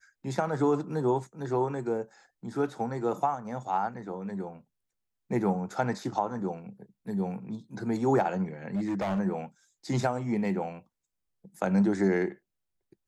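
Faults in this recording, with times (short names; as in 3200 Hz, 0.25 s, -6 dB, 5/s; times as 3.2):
8.75–9.2 clipped -26 dBFS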